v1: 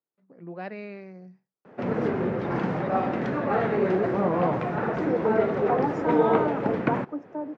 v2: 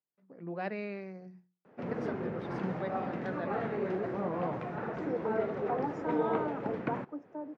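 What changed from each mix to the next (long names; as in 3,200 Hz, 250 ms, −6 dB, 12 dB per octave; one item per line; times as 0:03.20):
first voice: add mains-hum notches 60/120/180/240/300/360 Hz
second voice −8.0 dB
background −10.0 dB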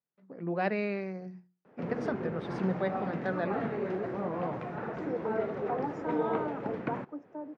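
first voice +6.5 dB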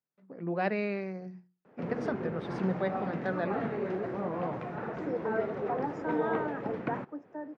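second voice: remove elliptic band-stop filter 1,400–5,300 Hz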